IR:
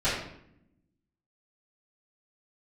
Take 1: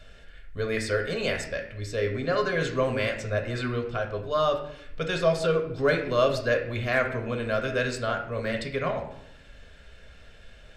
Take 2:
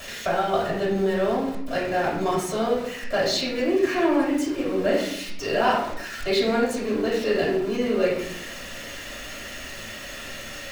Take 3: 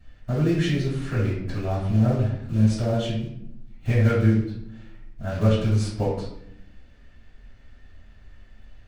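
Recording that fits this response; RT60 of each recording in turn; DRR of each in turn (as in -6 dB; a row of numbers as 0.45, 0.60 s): 3; 0.70, 0.70, 0.70 s; 2.5, -7.0, -16.0 dB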